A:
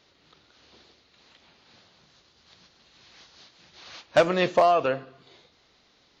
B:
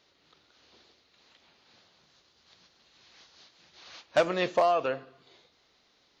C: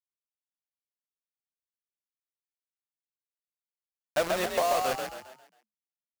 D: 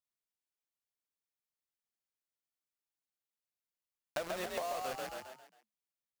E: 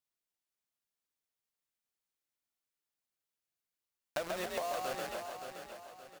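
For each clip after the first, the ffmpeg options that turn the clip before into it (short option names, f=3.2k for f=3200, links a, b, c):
-af "bass=f=250:g=-4,treble=f=4k:g=1,volume=-4.5dB"
-filter_complex "[0:a]acrusher=bits=4:mix=0:aa=0.000001,asplit=6[a][b][c][d][e][f];[b]adelay=135,afreqshift=42,volume=-4dB[g];[c]adelay=270,afreqshift=84,volume=-12dB[h];[d]adelay=405,afreqshift=126,volume=-19.9dB[i];[e]adelay=540,afreqshift=168,volume=-27.9dB[j];[f]adelay=675,afreqshift=210,volume=-35.8dB[k];[a][g][h][i][j][k]amix=inputs=6:normalize=0,volume=-3.5dB"
-af "acompressor=threshold=-34dB:ratio=6,volume=-1.5dB"
-af "aecho=1:1:572|1144|1716|2288|2860:0.398|0.159|0.0637|0.0255|0.0102,volume=1dB"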